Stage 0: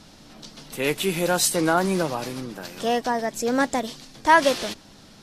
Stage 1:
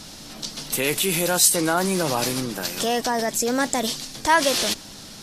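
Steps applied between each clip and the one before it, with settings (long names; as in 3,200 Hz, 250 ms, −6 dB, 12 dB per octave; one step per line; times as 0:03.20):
high-shelf EQ 4,000 Hz +11 dB
in parallel at −1 dB: compressor whose output falls as the input rises −28 dBFS, ratio −1
on the sum: level −3.5 dB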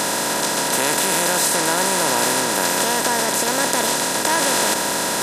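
compressor on every frequency bin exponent 0.2
low-shelf EQ 80 Hz −12 dB
level −7 dB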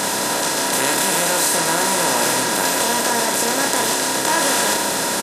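double-tracking delay 30 ms −3 dB
level −1 dB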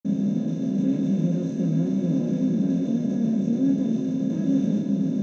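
convolution reverb, pre-delay 46 ms
level −7 dB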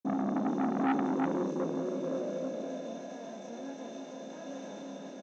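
high-pass filter sweep 310 Hz → 800 Hz, 0:00.87–0:03.10
single-tap delay 322 ms −5 dB
saturating transformer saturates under 950 Hz
level −4.5 dB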